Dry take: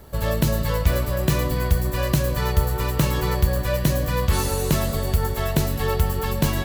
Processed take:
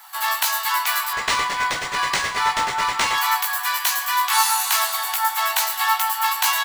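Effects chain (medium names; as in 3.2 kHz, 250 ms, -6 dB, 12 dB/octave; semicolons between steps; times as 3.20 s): steep high-pass 750 Hz 96 dB/octave; doubling 18 ms -4 dB; 1.13–3.18 s: decimation joined by straight lines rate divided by 3×; trim +8 dB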